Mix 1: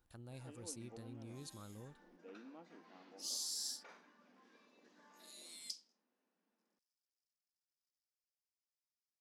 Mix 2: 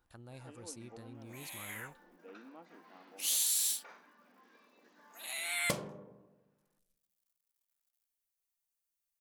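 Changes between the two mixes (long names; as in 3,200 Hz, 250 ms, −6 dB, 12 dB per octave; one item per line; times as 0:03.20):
second sound: remove four-pole ladder band-pass 5,300 Hz, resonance 80%
master: add parametric band 1,200 Hz +5.5 dB 2.4 octaves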